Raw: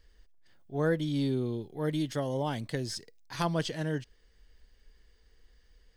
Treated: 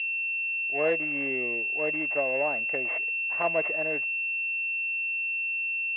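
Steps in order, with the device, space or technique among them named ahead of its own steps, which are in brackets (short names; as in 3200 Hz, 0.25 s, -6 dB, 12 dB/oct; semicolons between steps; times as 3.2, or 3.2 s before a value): toy sound module (decimation joined by straight lines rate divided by 6×; pulse-width modulation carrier 2700 Hz; speaker cabinet 600–3700 Hz, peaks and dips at 630 Hz +6 dB, 910 Hz -6 dB, 1400 Hz -7 dB, 2100 Hz +9 dB, 3000 Hz +7 dB); gain +7 dB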